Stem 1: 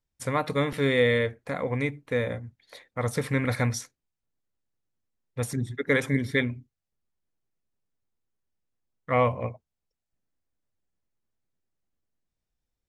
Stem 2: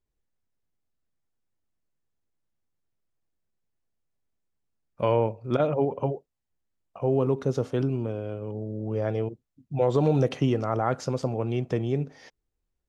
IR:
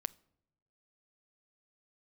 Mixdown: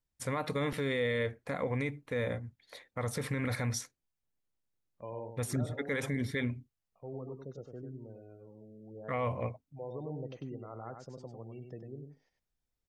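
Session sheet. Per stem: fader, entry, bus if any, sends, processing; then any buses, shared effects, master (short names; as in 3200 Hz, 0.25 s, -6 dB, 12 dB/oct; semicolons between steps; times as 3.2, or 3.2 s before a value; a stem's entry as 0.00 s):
-3.0 dB, 0.00 s, no send, no echo send, dry
-19.5 dB, 0.00 s, no send, echo send -6 dB, spectral gate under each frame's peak -25 dB strong; gate -39 dBFS, range -9 dB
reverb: off
echo: echo 98 ms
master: limiter -23 dBFS, peak gain reduction 9.5 dB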